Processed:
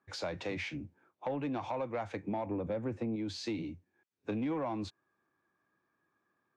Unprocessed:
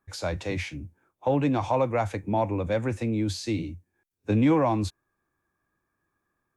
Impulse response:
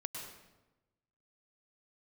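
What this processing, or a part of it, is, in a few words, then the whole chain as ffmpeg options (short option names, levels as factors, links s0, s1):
AM radio: -filter_complex "[0:a]asettb=1/sr,asplit=3[s0][s1][s2];[s0]atrim=end=2.464[s3];[s1]atrim=start=2.46:end=3.16,asetpts=PTS-STARTPTS,afade=t=in:d=0.004:c=qsin,afade=t=out:st=0.696:d=0.004:c=qsin,tiltshelf=f=1100:g=6.5[s4];[s2]atrim=start=3.156[s5];[s3][s4]acrossfade=d=0.004:c1=hsin:c2=qsin[s6];[s6][s5]acrossfade=d=0.004:c1=qsin:c2=hsin,highpass=160,lowpass=4500,acompressor=threshold=0.0224:ratio=4,asoftclip=type=tanh:threshold=0.0501"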